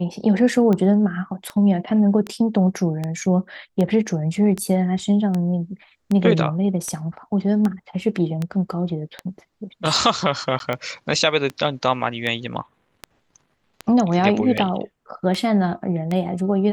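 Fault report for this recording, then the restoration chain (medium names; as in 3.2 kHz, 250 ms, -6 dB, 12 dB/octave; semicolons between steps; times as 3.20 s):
tick 78 rpm -12 dBFS
10.59–10.60 s: dropout 12 ms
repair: de-click; interpolate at 10.59 s, 12 ms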